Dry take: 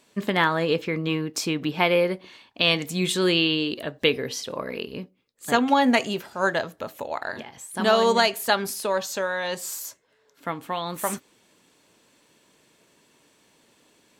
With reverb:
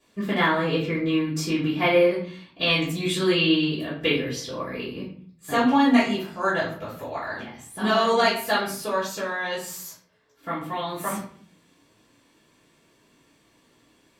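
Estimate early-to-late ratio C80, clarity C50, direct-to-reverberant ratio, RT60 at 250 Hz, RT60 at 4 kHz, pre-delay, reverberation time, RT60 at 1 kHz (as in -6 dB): 9.5 dB, 5.5 dB, -12.0 dB, 0.75 s, 0.35 s, 3 ms, 0.50 s, 0.50 s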